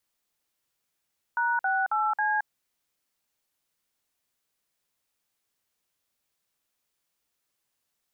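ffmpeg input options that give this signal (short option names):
-f lavfi -i "aevalsrc='0.0531*clip(min(mod(t,0.272),0.221-mod(t,0.272))/0.002,0,1)*(eq(floor(t/0.272),0)*(sin(2*PI*941*mod(t,0.272))+sin(2*PI*1477*mod(t,0.272)))+eq(floor(t/0.272),1)*(sin(2*PI*770*mod(t,0.272))+sin(2*PI*1477*mod(t,0.272)))+eq(floor(t/0.272),2)*(sin(2*PI*852*mod(t,0.272))+sin(2*PI*1336*mod(t,0.272)))+eq(floor(t/0.272),3)*(sin(2*PI*852*mod(t,0.272))+sin(2*PI*1633*mod(t,0.272))))':d=1.088:s=44100"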